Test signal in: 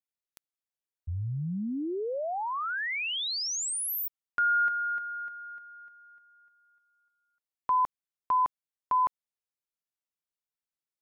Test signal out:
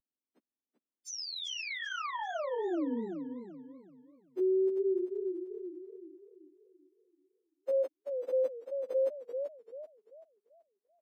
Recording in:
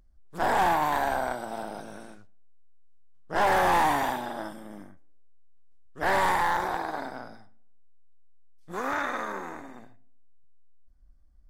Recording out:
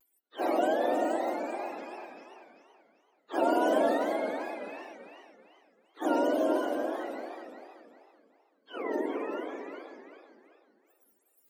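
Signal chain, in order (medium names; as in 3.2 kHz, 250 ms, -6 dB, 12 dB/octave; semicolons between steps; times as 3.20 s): spectrum inverted on a logarithmic axis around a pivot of 730 Hz; steep high-pass 240 Hz 48 dB/octave; vibrato 0.67 Hz 42 cents; modulated delay 386 ms, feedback 35%, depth 124 cents, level -7 dB; trim -1.5 dB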